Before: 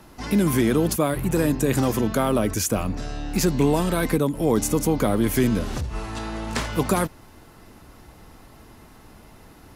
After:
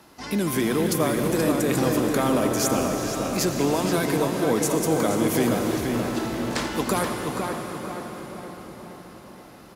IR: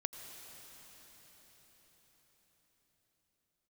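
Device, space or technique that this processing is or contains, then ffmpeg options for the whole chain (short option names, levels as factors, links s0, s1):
cathedral: -filter_complex "[1:a]atrim=start_sample=2205[s0];[0:a][s0]afir=irnorm=-1:irlink=0,highpass=f=240:p=1,equalizer=f=4600:w=1.5:g=2.5,asplit=2[s1][s2];[s2]adelay=478,lowpass=f=2900:p=1,volume=0.668,asplit=2[s3][s4];[s4]adelay=478,lowpass=f=2900:p=1,volume=0.49,asplit=2[s5][s6];[s6]adelay=478,lowpass=f=2900:p=1,volume=0.49,asplit=2[s7][s8];[s8]adelay=478,lowpass=f=2900:p=1,volume=0.49,asplit=2[s9][s10];[s10]adelay=478,lowpass=f=2900:p=1,volume=0.49,asplit=2[s11][s12];[s12]adelay=478,lowpass=f=2900:p=1,volume=0.49[s13];[s1][s3][s5][s7][s9][s11][s13]amix=inputs=7:normalize=0"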